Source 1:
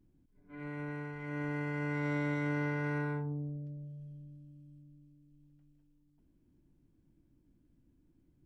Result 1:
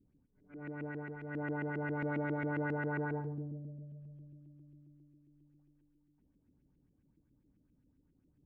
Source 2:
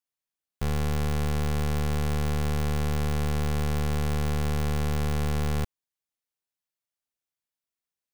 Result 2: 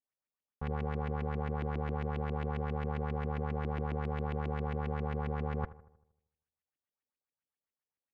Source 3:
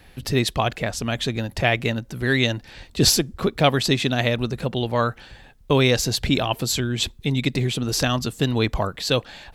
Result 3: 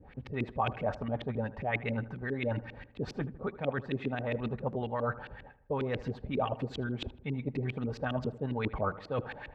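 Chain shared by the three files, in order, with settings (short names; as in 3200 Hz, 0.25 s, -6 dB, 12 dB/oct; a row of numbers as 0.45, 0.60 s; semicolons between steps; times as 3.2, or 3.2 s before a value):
notch comb 340 Hz; reverse; compressor 12:1, threshold -29 dBFS; reverse; dynamic EQ 840 Hz, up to +4 dB, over -46 dBFS, Q 1.1; LFO low-pass saw up 7.4 Hz 280–2700 Hz; on a send: darkening echo 78 ms, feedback 56%, low-pass 1900 Hz, level -16 dB; on the sum: gain -3 dB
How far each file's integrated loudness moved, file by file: -1.5, -7.5, -13.0 LU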